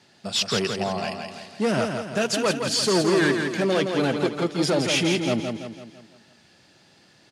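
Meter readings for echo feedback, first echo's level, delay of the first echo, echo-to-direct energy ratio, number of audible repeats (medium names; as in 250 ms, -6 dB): 48%, -5.5 dB, 167 ms, -4.5 dB, 5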